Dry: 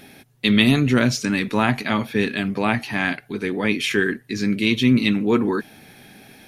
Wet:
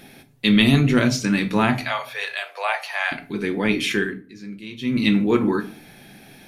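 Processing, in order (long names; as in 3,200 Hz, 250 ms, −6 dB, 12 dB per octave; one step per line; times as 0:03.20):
0:01.78–0:03.12: Butterworth high-pass 540 Hz 48 dB per octave
0:03.91–0:05.07: duck −16.5 dB, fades 0.31 s
rectangular room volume 280 cubic metres, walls furnished, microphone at 0.8 metres
level −1 dB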